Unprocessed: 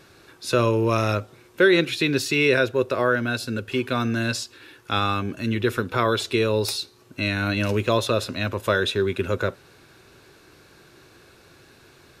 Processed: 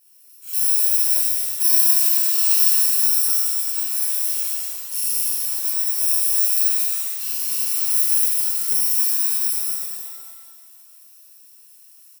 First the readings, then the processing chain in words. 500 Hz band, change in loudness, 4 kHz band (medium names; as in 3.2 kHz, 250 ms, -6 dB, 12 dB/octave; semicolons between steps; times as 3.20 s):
under -25 dB, +7.0 dB, 0.0 dB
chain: bit-reversed sample order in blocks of 64 samples; differentiator; on a send: loudspeakers at several distances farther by 34 m -10 dB, 77 m -4 dB; on the sum: pitch-shifted reverb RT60 1.8 s, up +7 st, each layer -2 dB, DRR -8.5 dB; trim -10 dB